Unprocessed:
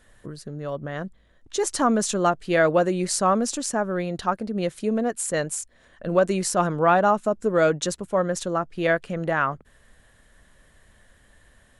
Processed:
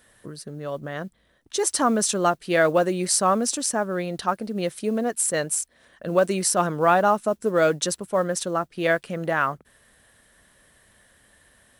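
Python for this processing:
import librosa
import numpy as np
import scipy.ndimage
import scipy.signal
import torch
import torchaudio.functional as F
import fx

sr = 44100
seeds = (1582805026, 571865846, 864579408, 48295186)

y = fx.highpass(x, sr, hz=130.0, slope=6)
y = fx.high_shelf(y, sr, hz=5900.0, db=8.5)
y = fx.notch(y, sr, hz=6900.0, q=9.1)
y = fx.mod_noise(y, sr, seeds[0], snr_db=34)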